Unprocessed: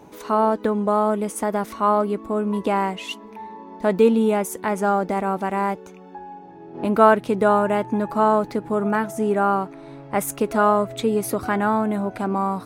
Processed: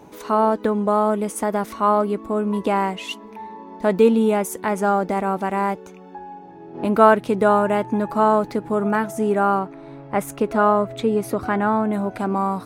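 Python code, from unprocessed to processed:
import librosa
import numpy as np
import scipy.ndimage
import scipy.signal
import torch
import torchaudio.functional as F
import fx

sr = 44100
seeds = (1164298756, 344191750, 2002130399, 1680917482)

y = fx.high_shelf(x, sr, hz=4400.0, db=-9.5, at=(9.59, 11.93))
y = y * 10.0 ** (1.0 / 20.0)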